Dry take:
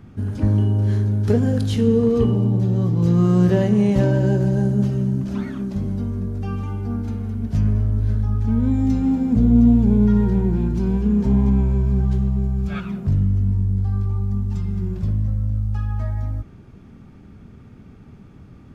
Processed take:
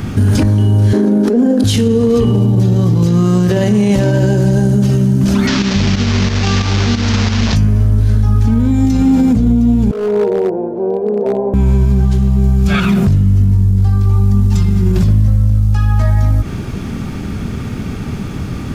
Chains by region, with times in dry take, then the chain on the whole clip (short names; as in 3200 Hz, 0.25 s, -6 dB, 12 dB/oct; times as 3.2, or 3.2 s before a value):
0.93–1.64 elliptic high-pass 220 Hz + tilt shelf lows +9.5 dB, about 1200 Hz + negative-ratio compressor -21 dBFS
5.47–7.56 delta modulation 32 kbps, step -28 dBFS + chopper 3 Hz, depth 65%, duty 45%
9.91–11.54 Butterworth band-pass 550 Hz, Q 2.1 + overloaded stage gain 30 dB
whole clip: high shelf 2600 Hz +10.5 dB; compressor, threshold -25 dBFS; maximiser +25.5 dB; gain -3.5 dB